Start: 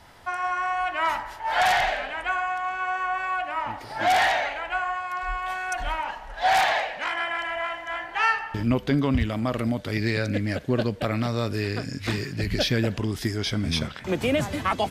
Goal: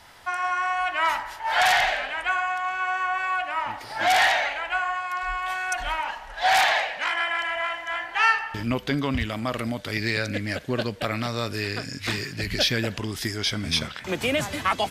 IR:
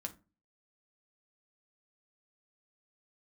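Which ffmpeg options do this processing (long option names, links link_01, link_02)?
-af "tiltshelf=frequency=820:gain=-4.5"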